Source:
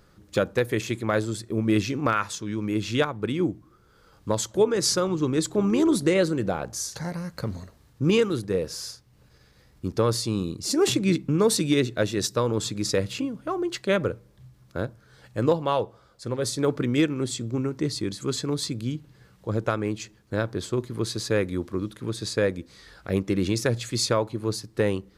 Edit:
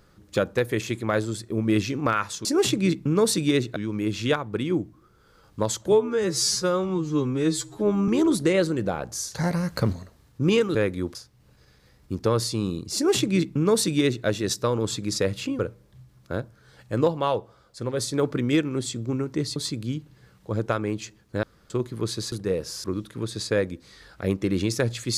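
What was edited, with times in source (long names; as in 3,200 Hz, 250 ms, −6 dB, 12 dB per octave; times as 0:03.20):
0:04.61–0:05.69: time-stretch 2×
0:06.99–0:07.54: clip gain +7 dB
0:08.36–0:08.88: swap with 0:21.30–0:21.70
0:10.68–0:11.99: duplicate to 0:02.45
0:13.32–0:14.04: remove
0:18.01–0:18.54: remove
0:20.41–0:20.68: fill with room tone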